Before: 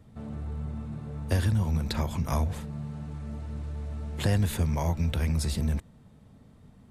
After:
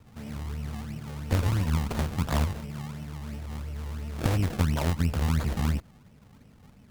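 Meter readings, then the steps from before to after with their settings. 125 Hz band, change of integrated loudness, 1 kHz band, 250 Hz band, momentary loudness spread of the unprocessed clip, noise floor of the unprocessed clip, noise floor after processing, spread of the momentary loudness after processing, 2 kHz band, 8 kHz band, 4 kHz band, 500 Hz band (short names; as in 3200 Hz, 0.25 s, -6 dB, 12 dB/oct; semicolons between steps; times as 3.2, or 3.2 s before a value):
0.0 dB, +0.5 dB, +2.0 dB, +1.0 dB, 11 LU, -55 dBFS, -55 dBFS, 11 LU, +2.5 dB, -1.0 dB, 0.0 dB, 0.0 dB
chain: added harmonics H 2 -6 dB, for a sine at -13.5 dBFS; decimation with a swept rate 31×, swing 100% 2.9 Hz; vibrato 7.4 Hz 49 cents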